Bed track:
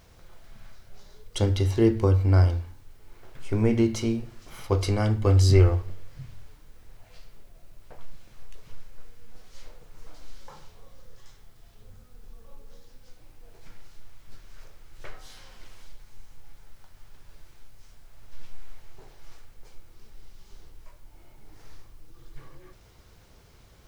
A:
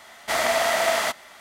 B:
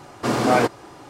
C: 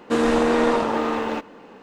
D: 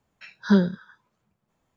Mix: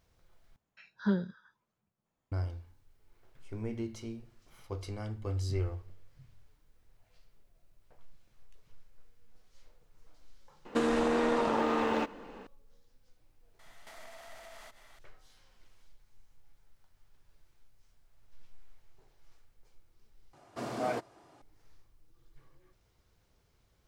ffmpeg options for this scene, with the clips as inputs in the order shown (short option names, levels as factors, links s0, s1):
-filter_complex "[0:a]volume=0.168[s0];[4:a]acrossover=split=3900[s1][s2];[s2]acompressor=threshold=0.00141:ratio=4:attack=1:release=60[s3];[s1][s3]amix=inputs=2:normalize=0[s4];[3:a]acompressor=threshold=0.0708:ratio=5:attack=19:release=141:knee=1:detection=peak[s5];[1:a]acompressor=threshold=0.0158:ratio=6:attack=3.2:release=140:knee=1:detection=peak[s6];[2:a]equalizer=f=660:w=7.1:g=9[s7];[s0]asplit=3[s8][s9][s10];[s8]atrim=end=0.564[s11];[s4]atrim=end=1.76,asetpts=PTS-STARTPTS,volume=0.282[s12];[s9]atrim=start=2.316:end=20.334[s13];[s7]atrim=end=1.09,asetpts=PTS-STARTPTS,volume=0.126[s14];[s10]atrim=start=21.416[s15];[s5]atrim=end=1.82,asetpts=PTS-STARTPTS,volume=0.631,afade=t=in:d=0.004:c=hsin,afade=t=out:st=1.816:d=0.004:c=hsin,adelay=10650[s16];[s6]atrim=end=1.4,asetpts=PTS-STARTPTS,volume=0.211,afade=t=in:d=0.004:c=hsin,afade=t=out:st=1.396:d=0.004:c=hsin,adelay=13590[s17];[s11][s12]acrossfade=d=0.004:c1=hsin:c2=hsin[s18];[s18][s13]acrossfade=d=0.004:c1=hsin:c2=hsin[s19];[s19][s14]acrossfade=d=0.004:c1=hsin:c2=hsin[s20];[s20][s15]acrossfade=d=0.004:c1=hsin:c2=hsin[s21];[s21][s16][s17]amix=inputs=3:normalize=0"